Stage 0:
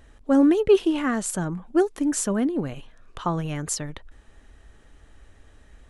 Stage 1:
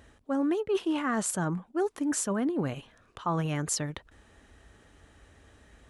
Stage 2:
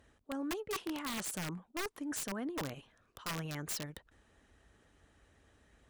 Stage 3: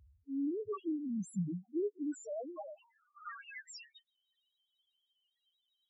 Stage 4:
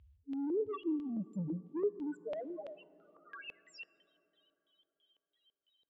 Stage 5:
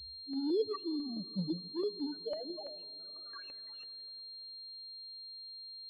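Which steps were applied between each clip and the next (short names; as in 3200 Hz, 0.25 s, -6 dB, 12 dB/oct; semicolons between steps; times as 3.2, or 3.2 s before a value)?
HPF 69 Hz 12 dB/oct; dynamic EQ 1100 Hz, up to +6 dB, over -37 dBFS, Q 1; reverse; compressor 6:1, threshold -26 dBFS, peak gain reduction 14.5 dB; reverse
harmonic-percussive split harmonic -4 dB; added harmonics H 6 -38 dB, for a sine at -14.5 dBFS; wrapped overs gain 25 dB; gain -7 dB
high-pass sweep 64 Hz -> 3300 Hz, 0.33–4.1; loudest bins only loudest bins 1; gain +7.5 dB
soft clip -32.5 dBFS, distortion -17 dB; LFO low-pass square 3 Hz 470–3100 Hz; plate-style reverb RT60 4.2 s, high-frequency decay 0.3×, DRR 19 dB
flange 1.2 Hz, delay 0.2 ms, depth 7.9 ms, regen +42%; pulse-width modulation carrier 4200 Hz; gain +4 dB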